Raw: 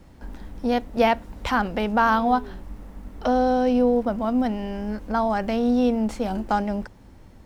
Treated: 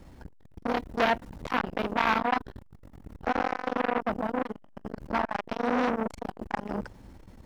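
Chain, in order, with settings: in parallel at -9.5 dB: hard clip -18.5 dBFS, distortion -12 dB; on the sum: core saturation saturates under 1700 Hz; gain -2 dB

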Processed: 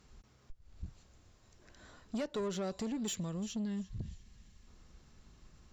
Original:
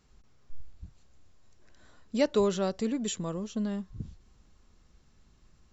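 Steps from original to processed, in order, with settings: on a send: thin delay 0.344 s, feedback 32%, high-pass 2100 Hz, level -18 dB; on the sum: compressor 4:1, threshold -35 dBFS, peak gain reduction 12.5 dB; spectral gain 3.15–4.67, 240–1600 Hz -7 dB; tube stage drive 35 dB, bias 0.25; gain +3.5 dB

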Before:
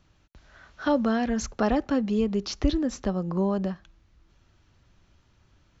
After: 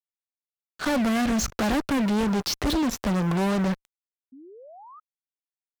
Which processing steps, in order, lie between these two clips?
G.711 law mismatch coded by A; fuzz box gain 36 dB, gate -43 dBFS; painted sound rise, 4.32–5, 250–1300 Hz -38 dBFS; gain -8 dB

